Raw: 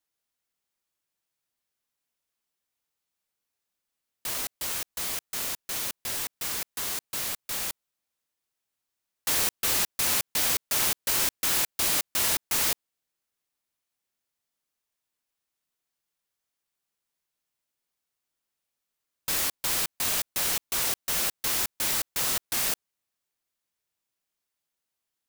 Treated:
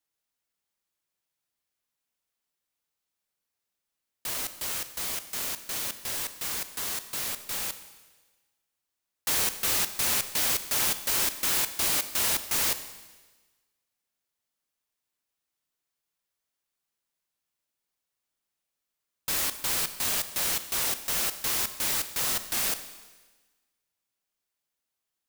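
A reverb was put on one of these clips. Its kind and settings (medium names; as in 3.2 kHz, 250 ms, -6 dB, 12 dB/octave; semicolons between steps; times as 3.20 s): Schroeder reverb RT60 1.3 s, combs from 29 ms, DRR 11 dB; trim -1 dB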